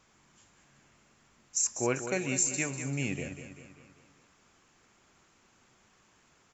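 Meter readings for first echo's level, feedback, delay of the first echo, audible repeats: -10.0 dB, 51%, 196 ms, 5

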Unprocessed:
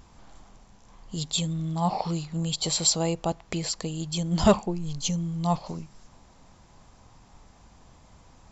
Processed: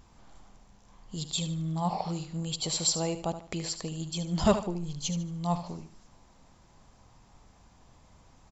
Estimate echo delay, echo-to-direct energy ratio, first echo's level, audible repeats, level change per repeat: 75 ms, -10.5 dB, -11.0 dB, 3, -9.5 dB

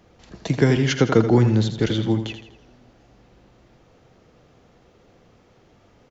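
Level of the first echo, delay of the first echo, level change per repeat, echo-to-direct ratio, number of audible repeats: -9.5 dB, 82 ms, -7.5 dB, -8.5 dB, 4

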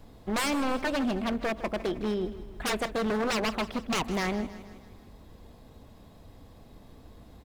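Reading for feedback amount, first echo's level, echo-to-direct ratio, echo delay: 53%, -15.0 dB, -13.5 dB, 157 ms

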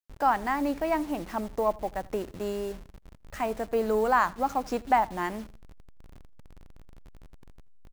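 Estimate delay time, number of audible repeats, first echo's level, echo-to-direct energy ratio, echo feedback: 83 ms, 2, -23.5 dB, -23.0 dB, 36%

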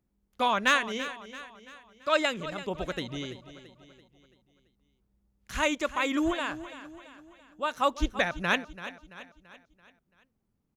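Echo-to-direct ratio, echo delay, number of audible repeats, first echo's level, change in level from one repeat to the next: -13.0 dB, 336 ms, 4, -14.0 dB, -6.5 dB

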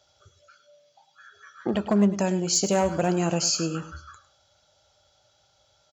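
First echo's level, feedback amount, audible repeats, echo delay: -14.0 dB, 17%, 2, 103 ms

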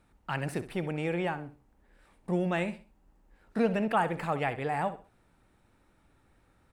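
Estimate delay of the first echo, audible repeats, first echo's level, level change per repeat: 65 ms, 3, -14.0 dB, -10.5 dB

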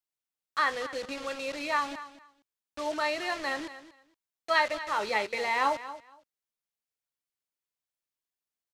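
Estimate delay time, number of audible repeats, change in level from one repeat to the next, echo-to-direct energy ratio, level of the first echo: 233 ms, 2, -15.5 dB, -14.5 dB, -14.5 dB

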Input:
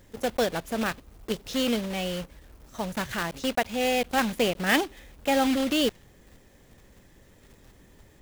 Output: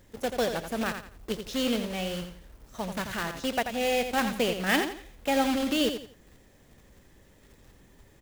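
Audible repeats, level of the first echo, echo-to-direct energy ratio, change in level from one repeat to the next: 3, -8.0 dB, -7.5 dB, -10.5 dB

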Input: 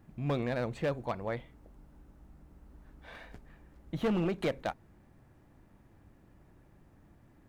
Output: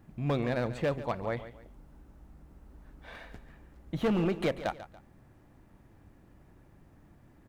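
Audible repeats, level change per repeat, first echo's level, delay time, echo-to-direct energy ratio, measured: 2, -9.0 dB, -14.0 dB, 142 ms, -13.5 dB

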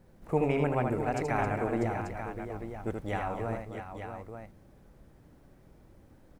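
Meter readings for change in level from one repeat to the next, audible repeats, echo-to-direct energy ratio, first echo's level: no regular repeats, 4, -1.5 dB, -4.5 dB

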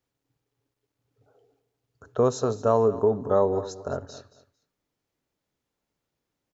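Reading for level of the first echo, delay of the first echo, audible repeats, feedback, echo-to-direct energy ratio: -16.0 dB, 225 ms, 2, 21%, -16.0 dB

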